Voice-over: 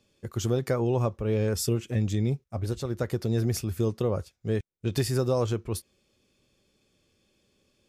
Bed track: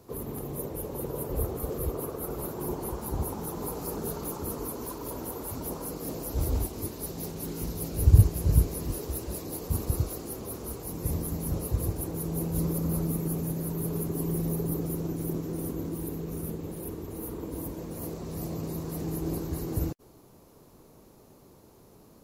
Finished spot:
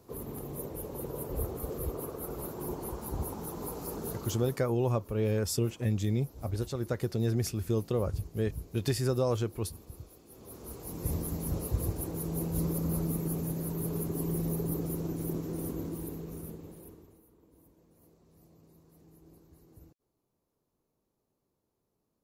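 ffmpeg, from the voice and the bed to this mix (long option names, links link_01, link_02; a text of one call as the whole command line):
ffmpeg -i stem1.wav -i stem2.wav -filter_complex "[0:a]adelay=3900,volume=-3dB[link_01];[1:a]volume=12.5dB,afade=type=out:start_time=4.1:duration=0.56:silence=0.177828,afade=type=in:start_time=10.27:duration=0.8:silence=0.149624,afade=type=out:start_time=15.76:duration=1.47:silence=0.0668344[link_02];[link_01][link_02]amix=inputs=2:normalize=0" out.wav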